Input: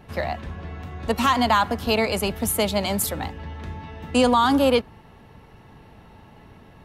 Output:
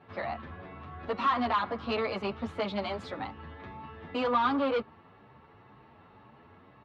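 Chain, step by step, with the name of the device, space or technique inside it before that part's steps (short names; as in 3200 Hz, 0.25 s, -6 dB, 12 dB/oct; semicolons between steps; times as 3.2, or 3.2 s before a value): barber-pole flanger into a guitar amplifier (endless flanger 9.2 ms +2 Hz; soft clip -20.5 dBFS, distortion -12 dB; speaker cabinet 110–3800 Hz, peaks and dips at 170 Hz -6 dB, 1200 Hz +8 dB, 3000 Hz -3 dB); gain -3.5 dB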